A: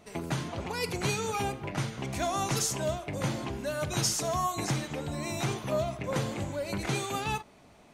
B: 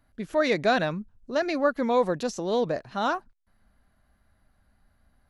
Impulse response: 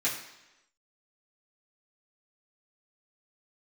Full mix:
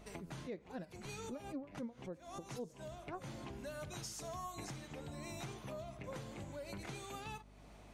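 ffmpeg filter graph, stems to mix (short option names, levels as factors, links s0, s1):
-filter_complex "[0:a]acompressor=threshold=0.00501:ratio=2.5,aeval=exprs='val(0)+0.00158*(sin(2*PI*50*n/s)+sin(2*PI*2*50*n/s)/2+sin(2*PI*3*50*n/s)/3+sin(2*PI*4*50*n/s)/4+sin(2*PI*5*50*n/s)/5)':c=same,volume=0.708[s0];[1:a]tiltshelf=f=880:g=8.5,aeval=exprs='val(0)*pow(10,-37*(0.5-0.5*cos(2*PI*3.8*n/s))/20)':c=same,volume=0.188,asplit=3[s1][s2][s3];[s2]volume=0.0841[s4];[s3]apad=whole_len=349776[s5];[s0][s5]sidechaincompress=threshold=0.00158:ratio=16:attack=29:release=117[s6];[2:a]atrim=start_sample=2205[s7];[s4][s7]afir=irnorm=-1:irlink=0[s8];[s6][s1][s8]amix=inputs=3:normalize=0,alimiter=level_in=3.35:limit=0.0631:level=0:latency=1:release=385,volume=0.299"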